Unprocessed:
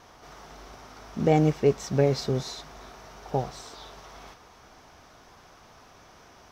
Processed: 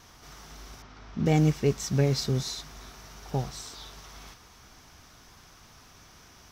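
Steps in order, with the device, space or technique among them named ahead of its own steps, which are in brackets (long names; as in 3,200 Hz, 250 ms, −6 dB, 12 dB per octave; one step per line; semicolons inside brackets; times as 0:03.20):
0:00.82–0:01.26: high-frequency loss of the air 180 metres
smiley-face EQ (low-shelf EQ 200 Hz +4 dB; parametric band 600 Hz −8 dB 1.7 octaves; high-shelf EQ 5,500 Hz +8.5 dB)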